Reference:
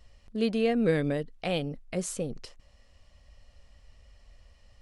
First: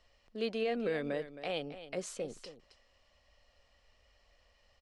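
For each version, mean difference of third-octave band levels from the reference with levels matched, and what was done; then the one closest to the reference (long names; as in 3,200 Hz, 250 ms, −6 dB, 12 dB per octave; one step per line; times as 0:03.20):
5.0 dB: three-way crossover with the lows and the highs turned down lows −13 dB, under 330 Hz, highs −13 dB, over 6,600 Hz
brickwall limiter −22 dBFS, peak gain reduction 5.5 dB
single-tap delay 268 ms −13 dB
level −3 dB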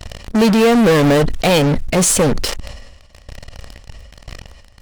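9.5 dB: shaped tremolo saw down 0.97 Hz, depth 35%
in parallel at −7 dB: fuzz pedal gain 44 dB, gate −50 dBFS
on the sum: level that may fall only so fast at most 44 dB per second
level +7 dB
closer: first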